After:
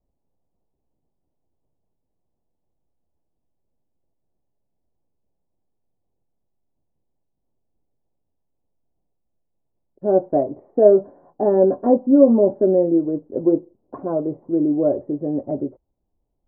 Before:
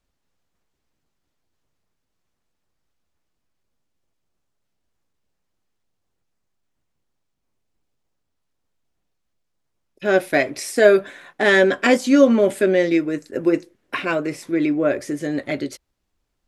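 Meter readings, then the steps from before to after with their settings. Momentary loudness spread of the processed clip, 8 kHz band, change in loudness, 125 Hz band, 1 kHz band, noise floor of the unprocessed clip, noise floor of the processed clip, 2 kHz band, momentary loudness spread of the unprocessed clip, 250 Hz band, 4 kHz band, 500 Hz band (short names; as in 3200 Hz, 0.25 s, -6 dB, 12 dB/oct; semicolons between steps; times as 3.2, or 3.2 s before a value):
11 LU, under -40 dB, 0.0 dB, +1.0 dB, -2.0 dB, -75 dBFS, -75 dBFS, under -30 dB, 12 LU, +1.0 dB, under -40 dB, +1.0 dB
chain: steep low-pass 860 Hz 36 dB/oct; gain +1 dB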